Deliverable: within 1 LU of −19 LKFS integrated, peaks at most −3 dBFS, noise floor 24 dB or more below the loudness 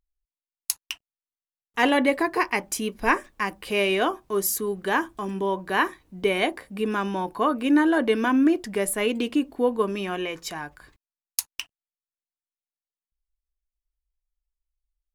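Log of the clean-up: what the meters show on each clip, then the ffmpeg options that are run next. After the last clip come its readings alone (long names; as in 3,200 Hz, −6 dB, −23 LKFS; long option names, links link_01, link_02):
integrated loudness −25.0 LKFS; sample peak −4.5 dBFS; target loudness −19.0 LKFS
→ -af "volume=6dB,alimiter=limit=-3dB:level=0:latency=1"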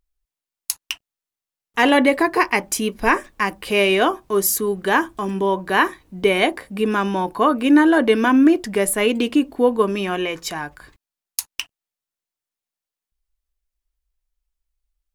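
integrated loudness −19.0 LKFS; sample peak −3.0 dBFS; background noise floor −89 dBFS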